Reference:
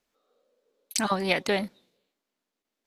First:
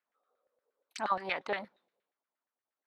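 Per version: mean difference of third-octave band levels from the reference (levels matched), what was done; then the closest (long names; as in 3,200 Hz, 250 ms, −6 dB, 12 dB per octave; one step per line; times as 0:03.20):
7.0 dB: low-shelf EQ 250 Hz +5.5 dB
auto-filter band-pass saw down 8.5 Hz 660–1,800 Hz
dynamic equaliser 3,900 Hz, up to +4 dB, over −49 dBFS, Q 1.3
level −1 dB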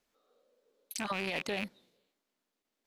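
4.0 dB: loose part that buzzes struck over −42 dBFS, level −16 dBFS
in parallel at +1.5 dB: downward compressor, threshold −35 dBFS, peak gain reduction 16 dB
on the sum: brickwall limiter −15.5 dBFS, peak gain reduction 11 dB
level −7.5 dB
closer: second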